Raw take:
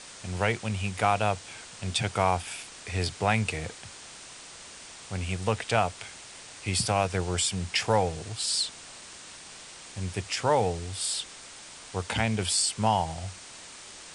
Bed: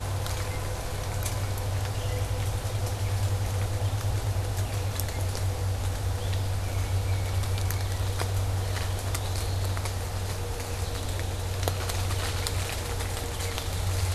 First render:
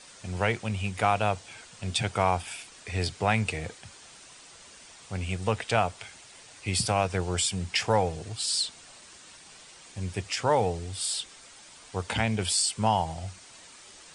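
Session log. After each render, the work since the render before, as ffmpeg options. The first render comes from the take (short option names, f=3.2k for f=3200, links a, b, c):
-af "afftdn=nr=7:nf=-46"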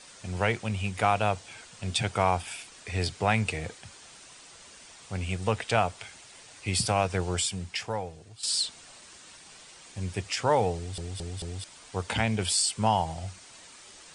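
-filter_complex "[0:a]asplit=6[a][b][c][d][e][f];[a]atrim=end=8.43,asetpts=PTS-STARTPTS,afade=t=out:st=7.3:d=1.13:c=qua:silence=0.237137[g];[b]atrim=start=8.43:end=10.982,asetpts=PTS-STARTPTS,afade=t=in:d=0.004:c=hsin:silence=0.237137[h];[c]atrim=start=10.758:end=10.982[i];[d]atrim=start=10.758:end=10.982[j];[e]atrim=start=10.758:end=10.982[k];[f]atrim=start=11.638[l];[g][h]concat=n=2:v=0:a=1[m];[m][i]acrossfade=d=0.004:c1=hsin:c2=hsin[n];[n][j]acrossfade=d=0.004:c1=hsin:c2=hsin[o];[o][k]acrossfade=d=0.004:c1=hsin:c2=hsin[p];[p][l]acrossfade=d=0.004:c1=hsin:c2=hsin"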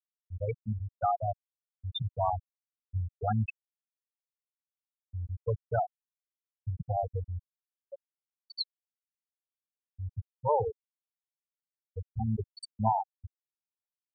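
-af "afftfilt=real='re*gte(hypot(re,im),0.282)':imag='im*gte(hypot(re,im),0.282)':win_size=1024:overlap=0.75,equalizer=f=570:t=o:w=0.77:g=-2.5"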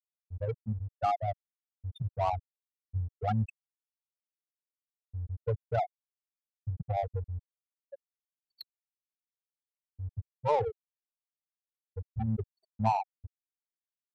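-af "aeval=exprs='sgn(val(0))*max(abs(val(0))-0.00112,0)':c=same,adynamicsmooth=sensitivity=3:basefreq=600"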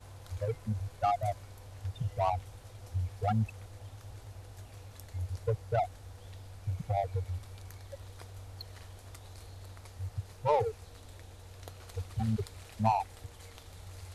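-filter_complex "[1:a]volume=-19.5dB[a];[0:a][a]amix=inputs=2:normalize=0"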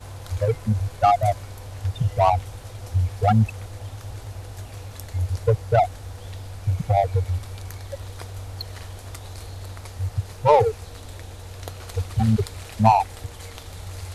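-af "volume=12dB"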